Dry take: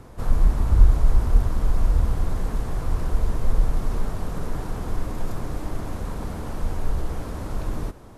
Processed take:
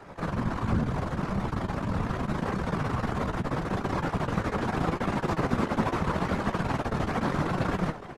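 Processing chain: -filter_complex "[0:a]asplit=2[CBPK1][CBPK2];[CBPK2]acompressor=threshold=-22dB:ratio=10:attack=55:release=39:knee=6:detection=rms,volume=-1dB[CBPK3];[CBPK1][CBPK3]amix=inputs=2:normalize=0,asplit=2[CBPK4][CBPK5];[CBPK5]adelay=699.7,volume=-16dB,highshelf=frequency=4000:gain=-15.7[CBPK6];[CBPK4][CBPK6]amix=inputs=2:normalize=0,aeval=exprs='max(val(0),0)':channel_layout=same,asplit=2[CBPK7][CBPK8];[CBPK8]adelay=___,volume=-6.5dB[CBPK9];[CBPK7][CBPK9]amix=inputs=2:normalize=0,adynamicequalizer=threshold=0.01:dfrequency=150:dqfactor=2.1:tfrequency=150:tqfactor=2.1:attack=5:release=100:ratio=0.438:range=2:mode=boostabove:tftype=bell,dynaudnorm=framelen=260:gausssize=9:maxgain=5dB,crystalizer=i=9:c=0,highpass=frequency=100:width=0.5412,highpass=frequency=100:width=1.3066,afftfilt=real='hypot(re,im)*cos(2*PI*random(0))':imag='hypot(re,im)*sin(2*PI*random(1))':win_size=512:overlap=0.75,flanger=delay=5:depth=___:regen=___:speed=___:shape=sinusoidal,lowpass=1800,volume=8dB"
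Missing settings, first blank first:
14, 4.4, 82, 0.78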